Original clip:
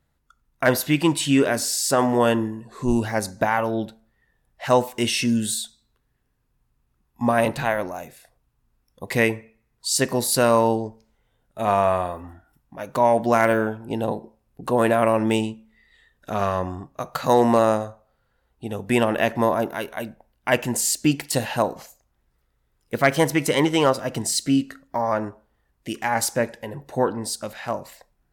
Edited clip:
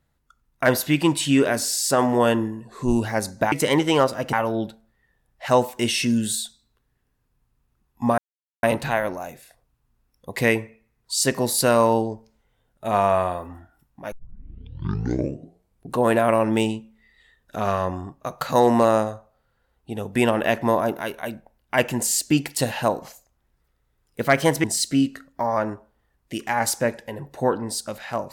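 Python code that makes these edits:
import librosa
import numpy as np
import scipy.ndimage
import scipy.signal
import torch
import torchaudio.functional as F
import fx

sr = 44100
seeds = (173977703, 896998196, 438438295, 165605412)

y = fx.edit(x, sr, fx.insert_silence(at_s=7.37, length_s=0.45),
    fx.tape_start(start_s=12.86, length_s=1.81),
    fx.move(start_s=23.38, length_s=0.81, to_s=3.52), tone=tone)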